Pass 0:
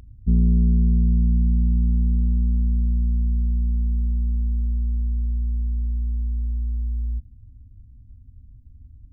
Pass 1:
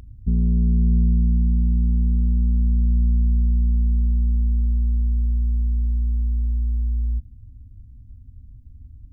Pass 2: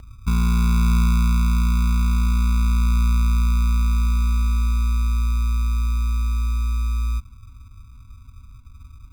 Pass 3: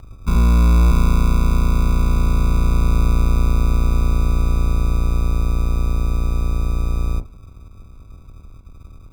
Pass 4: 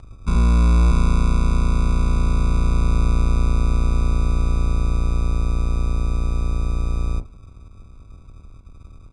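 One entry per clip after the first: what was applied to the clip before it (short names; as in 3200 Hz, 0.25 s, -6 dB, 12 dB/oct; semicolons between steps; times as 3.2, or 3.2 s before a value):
limiter -15.5 dBFS, peak gain reduction 6 dB; gain +3 dB
sample-and-hold 36×
octaver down 1 oct, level 0 dB; bell 810 Hz +5 dB 1.1 oct; on a send at -16 dB: reverb, pre-delay 32 ms
downsampling 22050 Hz; gain -2 dB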